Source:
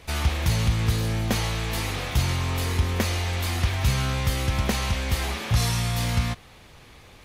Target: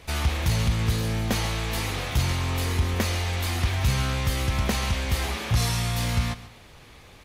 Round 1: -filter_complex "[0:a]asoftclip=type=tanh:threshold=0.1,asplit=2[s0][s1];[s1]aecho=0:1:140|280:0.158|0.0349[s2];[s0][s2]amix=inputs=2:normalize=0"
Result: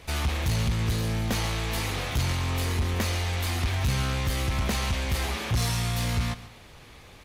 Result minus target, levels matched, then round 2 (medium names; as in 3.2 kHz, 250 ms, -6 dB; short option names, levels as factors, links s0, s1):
saturation: distortion +11 dB
-filter_complex "[0:a]asoftclip=type=tanh:threshold=0.266,asplit=2[s0][s1];[s1]aecho=0:1:140|280:0.158|0.0349[s2];[s0][s2]amix=inputs=2:normalize=0"